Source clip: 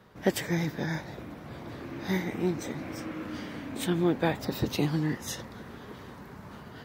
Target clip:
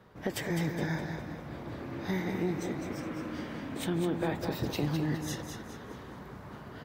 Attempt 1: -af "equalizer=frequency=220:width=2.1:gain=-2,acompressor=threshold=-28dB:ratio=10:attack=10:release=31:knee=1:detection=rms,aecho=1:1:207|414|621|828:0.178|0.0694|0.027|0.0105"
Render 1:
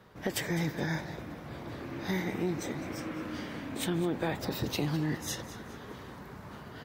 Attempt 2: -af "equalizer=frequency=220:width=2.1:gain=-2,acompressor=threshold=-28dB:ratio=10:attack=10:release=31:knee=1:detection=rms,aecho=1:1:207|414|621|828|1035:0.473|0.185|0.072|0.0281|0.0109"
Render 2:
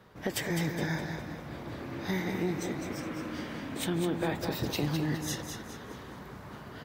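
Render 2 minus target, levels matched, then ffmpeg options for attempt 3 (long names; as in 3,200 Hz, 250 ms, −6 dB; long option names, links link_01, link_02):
4,000 Hz band +3.0 dB
-af "equalizer=frequency=220:width=2.1:gain=-2,acompressor=threshold=-28dB:ratio=10:attack=10:release=31:knee=1:detection=rms,highshelf=frequency=2000:gain=-5,aecho=1:1:207|414|621|828|1035:0.473|0.185|0.072|0.0281|0.0109"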